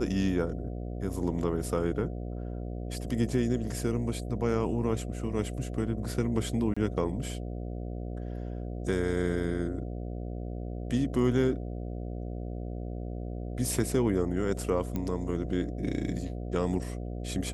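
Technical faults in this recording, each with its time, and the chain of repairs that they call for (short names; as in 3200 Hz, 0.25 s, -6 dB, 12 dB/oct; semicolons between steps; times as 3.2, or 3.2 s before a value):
buzz 60 Hz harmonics 12 -36 dBFS
6.74–6.76 gap 25 ms
14.96 pop -20 dBFS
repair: de-click; de-hum 60 Hz, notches 12; interpolate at 6.74, 25 ms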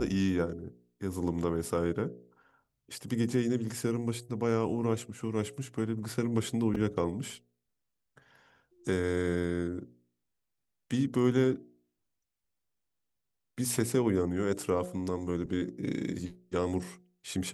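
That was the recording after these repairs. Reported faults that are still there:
none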